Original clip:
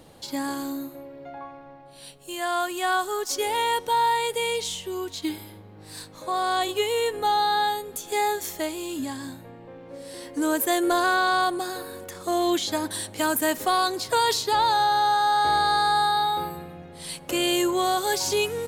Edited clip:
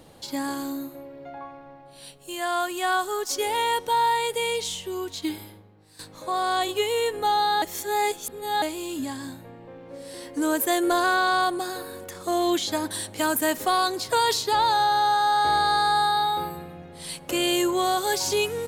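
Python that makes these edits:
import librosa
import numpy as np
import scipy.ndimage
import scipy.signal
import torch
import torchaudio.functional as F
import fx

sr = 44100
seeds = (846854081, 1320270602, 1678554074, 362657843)

y = fx.edit(x, sr, fx.fade_out_to(start_s=5.44, length_s=0.55, curve='qua', floor_db=-14.0),
    fx.reverse_span(start_s=7.62, length_s=1.0), tone=tone)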